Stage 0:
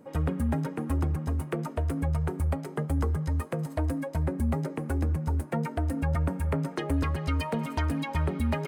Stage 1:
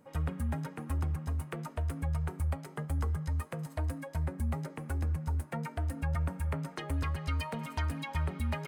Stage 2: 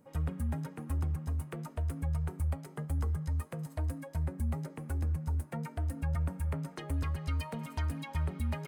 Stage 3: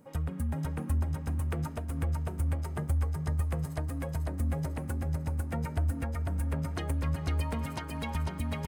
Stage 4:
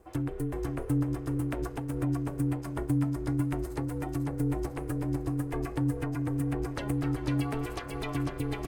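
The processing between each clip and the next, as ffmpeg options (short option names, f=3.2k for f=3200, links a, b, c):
-af "equalizer=f=340:w=0.7:g=-9,bandreject=f=332.2:t=h:w=4,bandreject=f=664.4:t=h:w=4,bandreject=f=996.6:t=h:w=4,bandreject=f=1.3288k:t=h:w=4,bandreject=f=1.661k:t=h:w=4,bandreject=f=1.9932k:t=h:w=4,bandreject=f=2.3254k:t=h:w=4,bandreject=f=2.6576k:t=h:w=4,bandreject=f=2.9898k:t=h:w=4,bandreject=f=3.322k:t=h:w=4,bandreject=f=3.6542k:t=h:w=4,bandreject=f=3.9864k:t=h:w=4,bandreject=f=4.3186k:t=h:w=4,bandreject=f=4.6508k:t=h:w=4,volume=-3dB"
-af "equalizer=f=1.8k:w=0.32:g=-5"
-af "acompressor=threshold=-34dB:ratio=6,aecho=1:1:497|994|1491|1988|2485|2982|3479|3976:0.631|0.36|0.205|0.117|0.0666|0.038|0.0216|0.0123,volume=5dB"
-af "flanger=delay=2.3:depth=8.1:regen=-73:speed=0.48:shape=sinusoidal,aeval=exprs='val(0)*sin(2*PI*210*n/s)':c=same,volume=7.5dB"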